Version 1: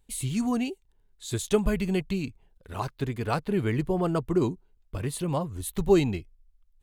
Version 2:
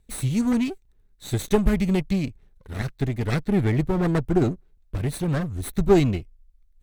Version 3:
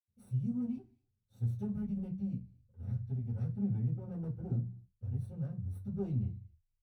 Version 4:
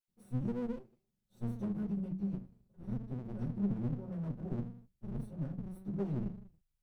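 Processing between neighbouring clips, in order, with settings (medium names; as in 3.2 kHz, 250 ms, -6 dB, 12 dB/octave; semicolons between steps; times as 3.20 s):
comb filter that takes the minimum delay 0.49 ms; bass shelf 400 Hz +5 dB; trim +1.5 dB
in parallel at -3 dB: saturation -24 dBFS, distortion -7 dB; on the sum: high-pass 74 Hz; reverberation RT60 0.25 s, pre-delay 76 ms; trim -9 dB
comb filter that takes the minimum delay 5.4 ms; trim +1 dB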